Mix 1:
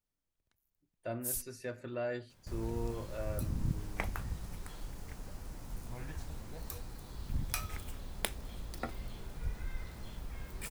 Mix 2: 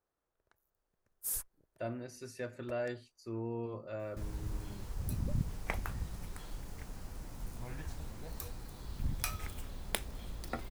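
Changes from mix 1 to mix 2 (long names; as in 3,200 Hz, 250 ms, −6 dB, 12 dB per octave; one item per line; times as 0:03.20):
speech: entry +0.75 s
first sound: add flat-topped bell 780 Hz +12 dB 2.6 octaves
second sound: entry +1.70 s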